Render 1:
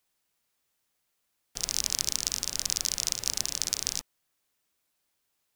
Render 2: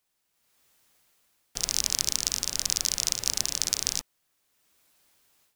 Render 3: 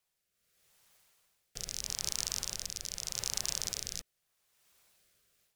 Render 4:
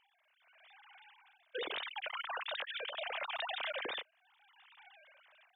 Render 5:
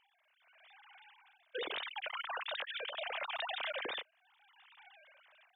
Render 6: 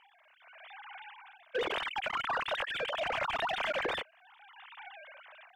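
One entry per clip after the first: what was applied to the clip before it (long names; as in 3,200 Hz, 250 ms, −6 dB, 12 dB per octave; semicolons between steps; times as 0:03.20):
automatic gain control gain up to 13 dB; level −1 dB
brickwall limiter −12 dBFS, peak gain reduction 10 dB; parametric band 280 Hz −14 dB 0.35 octaves; rotating-speaker cabinet horn 0.8 Hz
three sine waves on the formant tracks; brickwall limiter −31 dBFS, peak gain reduction 8.5 dB
no processing that can be heard
mid-hump overdrive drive 14 dB, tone 1,100 Hz, clips at −30.5 dBFS; level +8 dB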